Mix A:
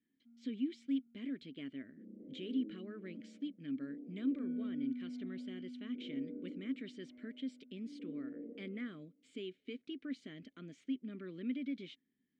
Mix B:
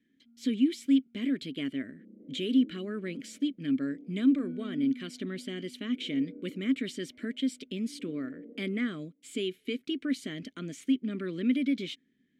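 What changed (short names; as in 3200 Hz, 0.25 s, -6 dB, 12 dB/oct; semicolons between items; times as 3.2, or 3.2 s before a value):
speech +11.5 dB; first sound: send on; master: remove air absorption 120 m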